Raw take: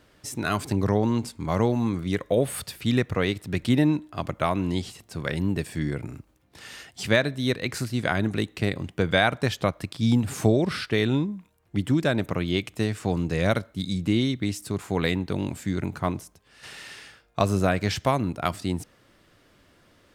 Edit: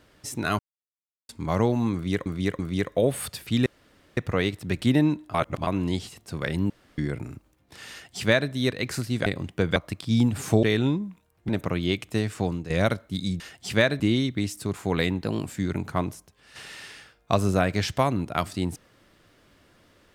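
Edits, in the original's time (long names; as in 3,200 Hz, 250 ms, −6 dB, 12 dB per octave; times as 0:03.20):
0:00.59–0:01.29: silence
0:01.93–0:02.26: repeat, 3 plays
0:03.00: splice in room tone 0.51 s
0:04.17–0:04.50: reverse
0:05.53–0:05.81: fill with room tone
0:06.74–0:07.34: duplicate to 0:14.05
0:08.09–0:08.66: remove
0:09.16–0:09.68: remove
0:10.55–0:10.91: remove
0:11.77–0:12.14: remove
0:13.06–0:13.35: fade out, to −12 dB
0:15.29–0:15.54: play speed 112%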